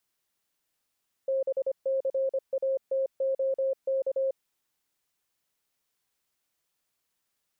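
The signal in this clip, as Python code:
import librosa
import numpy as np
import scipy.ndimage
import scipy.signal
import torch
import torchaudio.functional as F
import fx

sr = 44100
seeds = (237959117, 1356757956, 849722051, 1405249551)

y = fx.morse(sr, text='BCATOK', wpm=25, hz=535.0, level_db=-24.0)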